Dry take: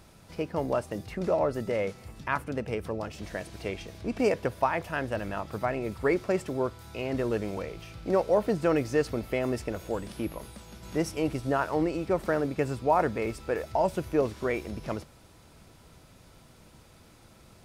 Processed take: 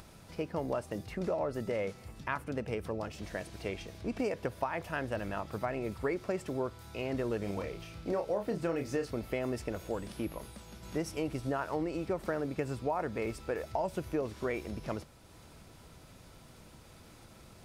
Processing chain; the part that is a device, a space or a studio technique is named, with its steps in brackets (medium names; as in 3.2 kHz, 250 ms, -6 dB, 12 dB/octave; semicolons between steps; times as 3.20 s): 7.39–9.11 s: doubling 30 ms -6.5 dB; upward and downward compression (upward compressor, threshold -45 dBFS; compression 6:1, threshold -26 dBFS, peak gain reduction 9 dB); trim -3 dB